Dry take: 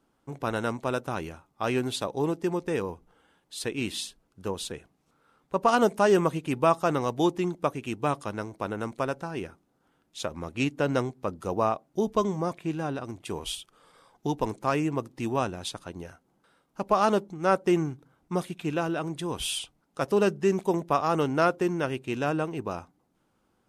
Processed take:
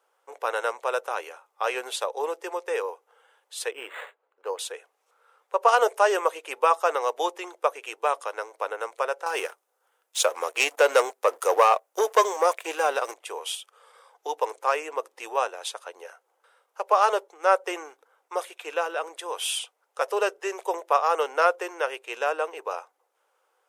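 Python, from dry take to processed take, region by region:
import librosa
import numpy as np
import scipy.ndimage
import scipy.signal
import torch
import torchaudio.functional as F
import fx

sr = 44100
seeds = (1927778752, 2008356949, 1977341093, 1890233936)

y = fx.chain(x, sr, fx.high_shelf(hz=5000.0, db=-12.0),
    fx.resample_linear(factor=8), at=(3.71, 4.59))
y = fx.chain(y, sr, fx.high_shelf(hz=6300.0, db=10.0),
    fx.leveller(passes=2), at=(9.26, 13.14))
y = scipy.signal.sosfilt(scipy.signal.ellip(4, 1.0, 60, 470.0, 'highpass', fs=sr, output='sos'), y)
y = fx.peak_eq(y, sr, hz=4300.0, db=-4.5, octaves=0.57)
y = fx.notch(y, sr, hz=660.0, q=19.0)
y = y * 10.0 ** (4.5 / 20.0)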